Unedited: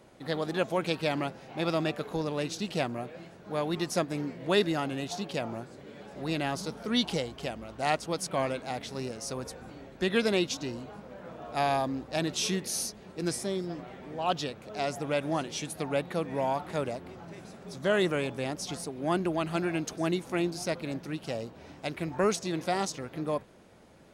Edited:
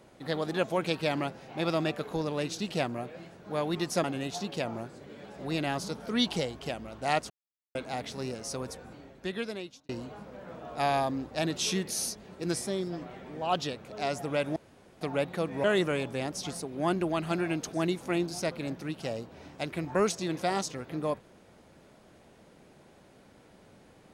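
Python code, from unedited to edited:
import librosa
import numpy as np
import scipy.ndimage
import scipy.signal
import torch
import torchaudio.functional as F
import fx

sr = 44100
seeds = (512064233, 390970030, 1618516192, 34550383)

y = fx.edit(x, sr, fx.cut(start_s=4.04, length_s=0.77),
    fx.silence(start_s=8.07, length_s=0.45),
    fx.fade_out_span(start_s=9.4, length_s=1.26),
    fx.room_tone_fill(start_s=15.33, length_s=0.45),
    fx.cut(start_s=16.41, length_s=1.47), tone=tone)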